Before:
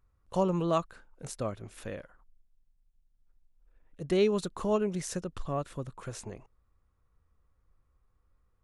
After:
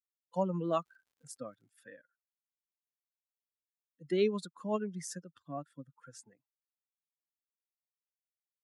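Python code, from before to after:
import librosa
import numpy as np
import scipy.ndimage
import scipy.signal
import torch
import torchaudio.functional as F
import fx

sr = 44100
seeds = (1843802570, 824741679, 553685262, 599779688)

y = fx.bin_expand(x, sr, power=2.0)
y = scipy.signal.sosfilt(scipy.signal.butter(6, 160.0, 'highpass', fs=sr, output='sos'), y)
y = fx.dmg_crackle(y, sr, seeds[0], per_s=fx.line((0.64, 230.0), (1.7, 77.0)), level_db=-63.0, at=(0.64, 1.7), fade=0.02)
y = y * 10.0 ** (-1.5 / 20.0)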